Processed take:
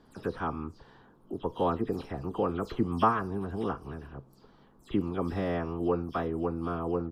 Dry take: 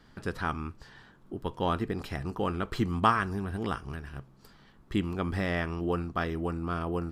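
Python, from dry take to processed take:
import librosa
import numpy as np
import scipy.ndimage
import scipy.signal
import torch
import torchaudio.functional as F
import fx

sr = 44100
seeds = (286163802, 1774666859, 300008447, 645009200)

y = fx.spec_delay(x, sr, highs='early', ms=116)
y = fx.graphic_eq_10(y, sr, hz=(250, 500, 1000, 2000, 8000), db=(5, 7, 5, -6, -4))
y = y * librosa.db_to_amplitude(-4.5)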